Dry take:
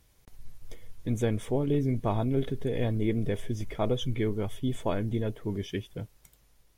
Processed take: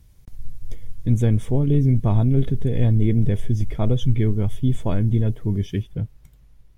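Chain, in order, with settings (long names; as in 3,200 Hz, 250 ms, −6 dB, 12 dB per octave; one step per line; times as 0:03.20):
bass and treble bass +14 dB, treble +2 dB, from 0:05.82 treble −6 dB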